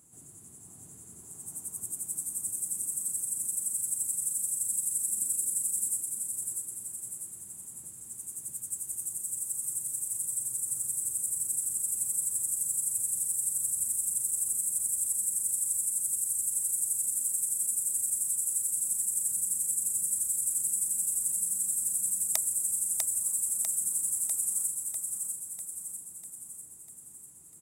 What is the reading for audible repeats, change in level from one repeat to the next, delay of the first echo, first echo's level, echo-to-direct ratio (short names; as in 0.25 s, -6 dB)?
7, -5.0 dB, 0.647 s, -4.0 dB, -2.5 dB